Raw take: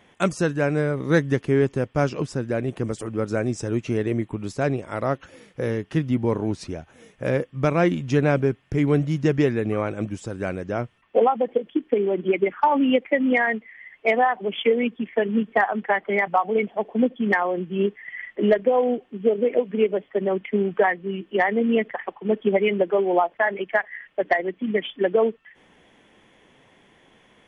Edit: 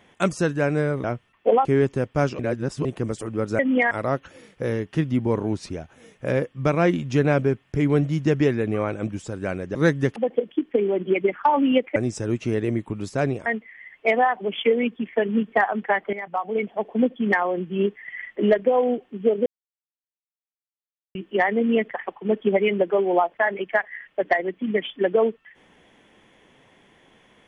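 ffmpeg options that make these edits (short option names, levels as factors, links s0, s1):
-filter_complex "[0:a]asplit=14[s0][s1][s2][s3][s4][s5][s6][s7][s8][s9][s10][s11][s12][s13];[s0]atrim=end=1.042[s14];[s1]atrim=start=10.728:end=11.342[s15];[s2]atrim=start=1.448:end=2.192[s16];[s3]atrim=start=2.188:end=2.652,asetpts=PTS-STARTPTS,areverse[s17];[s4]atrim=start=2.648:end=3.392[s18];[s5]atrim=start=13.138:end=13.462[s19];[s6]atrim=start=4.888:end=10.732[s20];[s7]atrim=start=1.038:end=1.452[s21];[s8]atrim=start=11.338:end=13.142[s22];[s9]atrim=start=3.388:end=4.892[s23];[s10]atrim=start=13.458:end=16.13,asetpts=PTS-STARTPTS,afade=t=out:st=2.668:d=0.004:c=hsin:silence=0.177828[s24];[s11]atrim=start=16.13:end=19.46,asetpts=PTS-STARTPTS,afade=t=in:d=0.96:c=qsin:silence=0.177828,afade=t=out:st=3.326:d=0.004:c=hsin[s25];[s12]atrim=start=19.46:end=21.15,asetpts=PTS-STARTPTS,volume=0[s26];[s13]atrim=start=21.15,asetpts=PTS-STARTPTS,afade=t=in:d=0.004:c=hsin[s27];[s14][s15]acrossfade=d=0.004:c1=hsin:c2=hsin[s28];[s28][s16]acrossfade=d=0.004:c1=hsin:c2=hsin[s29];[s29][s17]acrossfade=d=0.004:c1=hsin:c2=hsin[s30];[s30][s18]acrossfade=d=0.004:c1=hsin:c2=hsin[s31];[s31][s19]acrossfade=d=0.004:c1=hsin:c2=hsin[s32];[s32][s20]acrossfade=d=0.004:c1=hsin:c2=hsin[s33];[s33][s21]acrossfade=d=0.004:c1=hsin:c2=hsin[s34];[s34][s22]acrossfade=d=0.004:c1=hsin:c2=hsin[s35];[s35][s23]acrossfade=d=0.004:c1=hsin:c2=hsin[s36];[s24][s25][s26][s27]concat=n=4:v=0:a=1[s37];[s36][s37]acrossfade=d=0.004:c1=hsin:c2=hsin"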